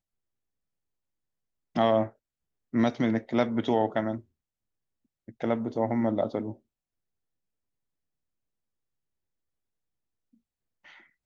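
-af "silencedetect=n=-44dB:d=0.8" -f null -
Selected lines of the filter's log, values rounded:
silence_start: 0.00
silence_end: 1.76 | silence_duration: 1.76
silence_start: 4.21
silence_end: 5.28 | silence_duration: 1.08
silence_start: 6.54
silence_end: 10.86 | silence_duration: 4.33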